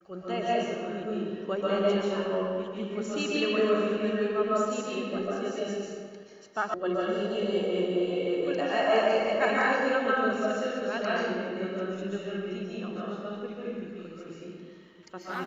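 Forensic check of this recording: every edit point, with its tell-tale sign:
0:06.74: cut off before it has died away

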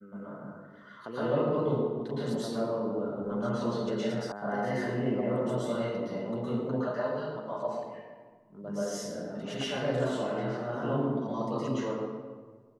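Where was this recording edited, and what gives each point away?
0:04.32: cut off before it has died away

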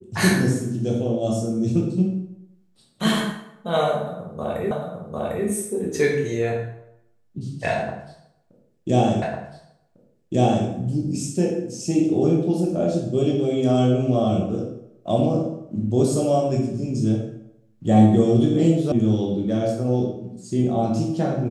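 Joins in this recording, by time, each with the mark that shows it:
0:04.71: the same again, the last 0.75 s
0:09.22: the same again, the last 1.45 s
0:18.92: cut off before it has died away

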